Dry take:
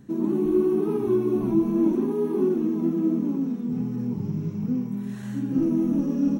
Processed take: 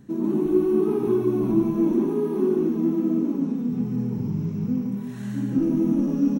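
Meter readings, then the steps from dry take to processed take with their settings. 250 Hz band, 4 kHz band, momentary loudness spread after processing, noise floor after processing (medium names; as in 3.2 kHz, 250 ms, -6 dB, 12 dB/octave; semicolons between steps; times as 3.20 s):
+1.0 dB, no reading, 6 LU, -32 dBFS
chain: delay 146 ms -4 dB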